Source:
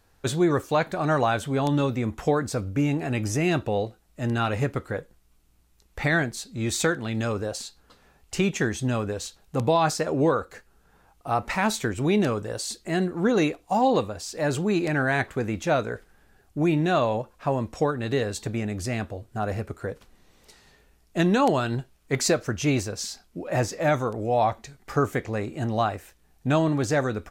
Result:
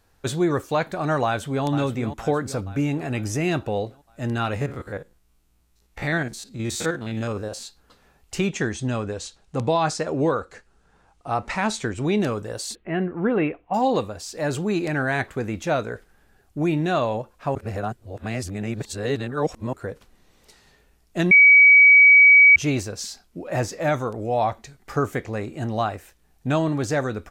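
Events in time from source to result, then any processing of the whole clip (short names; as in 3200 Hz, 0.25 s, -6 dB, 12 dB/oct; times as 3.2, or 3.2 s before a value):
1.25–1.66 echo throw 0.47 s, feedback 55%, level -10 dB
4.56–7.63 stepped spectrum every 50 ms
8.47–12.21 LPF 9200 Hz 24 dB/oct
12.75–13.74 steep low-pass 2900 Hz 48 dB/oct
17.55–19.73 reverse
21.31–22.56 bleep 2270 Hz -8 dBFS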